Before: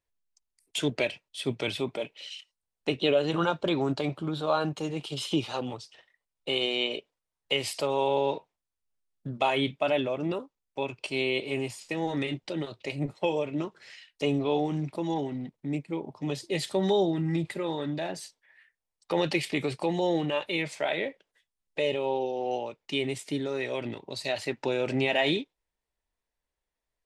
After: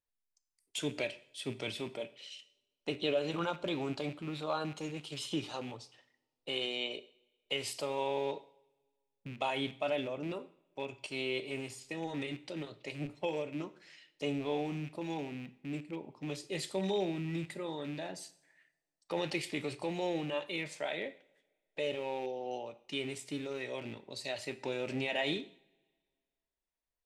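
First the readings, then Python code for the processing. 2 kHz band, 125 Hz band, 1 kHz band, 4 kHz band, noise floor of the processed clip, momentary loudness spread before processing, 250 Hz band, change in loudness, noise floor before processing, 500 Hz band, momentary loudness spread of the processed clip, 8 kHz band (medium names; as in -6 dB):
-7.0 dB, -9.0 dB, -8.5 dB, -7.0 dB, under -85 dBFS, 11 LU, -8.0 dB, -8.0 dB, under -85 dBFS, -8.0 dB, 10 LU, -4.5 dB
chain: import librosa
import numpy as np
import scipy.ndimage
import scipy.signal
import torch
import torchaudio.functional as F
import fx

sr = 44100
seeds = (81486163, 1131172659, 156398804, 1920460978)

y = fx.rattle_buzz(x, sr, strikes_db=-37.0, level_db=-32.0)
y = fx.dynamic_eq(y, sr, hz=7600.0, q=0.75, threshold_db=-50.0, ratio=4.0, max_db=4)
y = fx.rev_double_slope(y, sr, seeds[0], early_s=0.57, late_s=1.8, knee_db=-22, drr_db=12.0)
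y = F.gain(torch.from_numpy(y), -8.5).numpy()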